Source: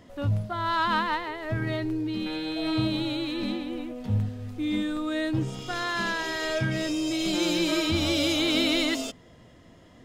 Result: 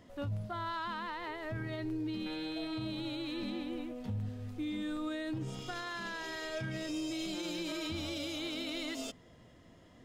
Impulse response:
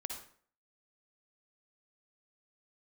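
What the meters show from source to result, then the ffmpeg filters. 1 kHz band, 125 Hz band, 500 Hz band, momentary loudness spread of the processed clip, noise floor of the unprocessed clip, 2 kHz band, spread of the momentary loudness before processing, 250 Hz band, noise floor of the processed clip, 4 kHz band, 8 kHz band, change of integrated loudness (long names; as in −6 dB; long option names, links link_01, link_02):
−11.5 dB, −11.0 dB, −11.0 dB, 3 LU, −53 dBFS, −11.5 dB, 8 LU, −10.5 dB, −59 dBFS, −12.5 dB, −11.5 dB, −11.0 dB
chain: -af "alimiter=limit=-24dB:level=0:latency=1:release=87,volume=-6dB"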